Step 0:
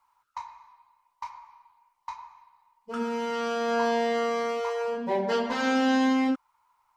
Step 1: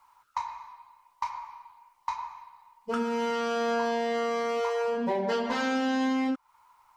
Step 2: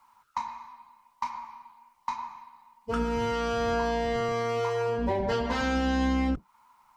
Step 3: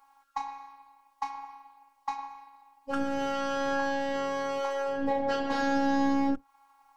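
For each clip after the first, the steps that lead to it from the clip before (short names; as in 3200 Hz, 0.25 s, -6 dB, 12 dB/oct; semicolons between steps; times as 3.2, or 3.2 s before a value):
compressor 4:1, threshold -35 dBFS, peak gain reduction 12.5 dB; gain +8 dB
octaver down 2 oct, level -2 dB
robotiser 275 Hz; small resonant body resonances 460/790/1600 Hz, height 9 dB, ringing for 45 ms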